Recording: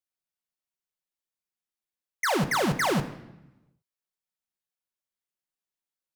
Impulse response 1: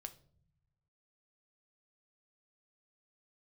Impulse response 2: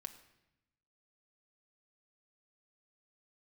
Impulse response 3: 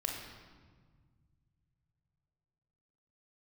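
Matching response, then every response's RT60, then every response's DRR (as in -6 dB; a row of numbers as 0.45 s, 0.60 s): 2; no single decay rate, 0.90 s, 1.6 s; 8.0 dB, 6.0 dB, 0.5 dB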